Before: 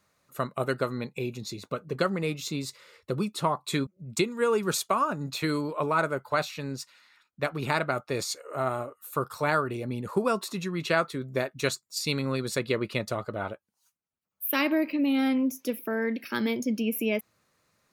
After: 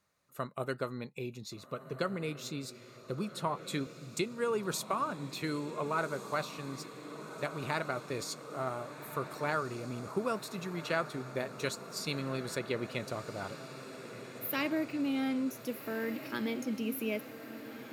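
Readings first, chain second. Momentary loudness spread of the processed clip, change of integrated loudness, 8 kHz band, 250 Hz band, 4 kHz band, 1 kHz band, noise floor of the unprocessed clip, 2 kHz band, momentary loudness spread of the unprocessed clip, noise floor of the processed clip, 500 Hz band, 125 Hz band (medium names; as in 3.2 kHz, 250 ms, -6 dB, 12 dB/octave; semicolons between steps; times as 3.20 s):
11 LU, -7.5 dB, -7.0 dB, -7.0 dB, -7.0 dB, -7.0 dB, -78 dBFS, -7.0 dB, 9 LU, -52 dBFS, -7.0 dB, -7.0 dB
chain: echo that smears into a reverb 1521 ms, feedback 69%, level -12 dB; trim -7.5 dB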